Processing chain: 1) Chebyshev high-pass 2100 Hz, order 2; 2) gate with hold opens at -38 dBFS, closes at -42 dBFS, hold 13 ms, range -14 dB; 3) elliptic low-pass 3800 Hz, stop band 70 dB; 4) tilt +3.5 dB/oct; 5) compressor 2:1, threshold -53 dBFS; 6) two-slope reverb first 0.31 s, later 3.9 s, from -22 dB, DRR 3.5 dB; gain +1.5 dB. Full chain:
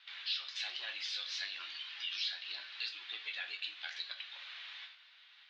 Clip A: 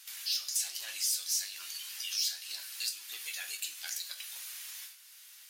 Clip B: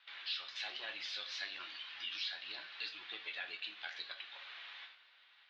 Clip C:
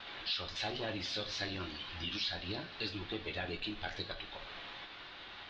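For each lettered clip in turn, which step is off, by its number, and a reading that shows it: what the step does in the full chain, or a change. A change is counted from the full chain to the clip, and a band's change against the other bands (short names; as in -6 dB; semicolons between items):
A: 3, 8 kHz band +25.5 dB; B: 4, 500 Hz band +8.0 dB; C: 1, 500 Hz band +21.5 dB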